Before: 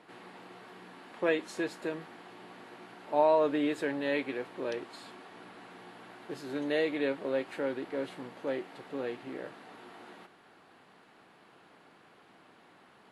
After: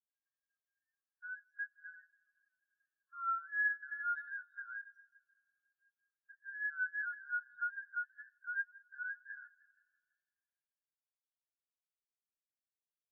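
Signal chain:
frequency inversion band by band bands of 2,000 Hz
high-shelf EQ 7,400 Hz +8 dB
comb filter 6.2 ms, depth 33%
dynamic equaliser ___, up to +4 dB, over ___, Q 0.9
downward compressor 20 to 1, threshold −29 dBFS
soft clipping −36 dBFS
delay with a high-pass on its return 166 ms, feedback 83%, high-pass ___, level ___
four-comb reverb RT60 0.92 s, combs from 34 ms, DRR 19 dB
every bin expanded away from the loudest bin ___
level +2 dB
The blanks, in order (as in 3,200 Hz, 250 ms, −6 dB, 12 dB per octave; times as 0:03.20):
1,500 Hz, −43 dBFS, 1,700 Hz, −3.5 dB, 4 to 1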